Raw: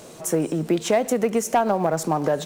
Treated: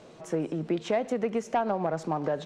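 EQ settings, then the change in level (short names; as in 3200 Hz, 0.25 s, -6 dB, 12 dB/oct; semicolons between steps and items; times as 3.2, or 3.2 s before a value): LPF 3900 Hz 12 dB/oct; -7.0 dB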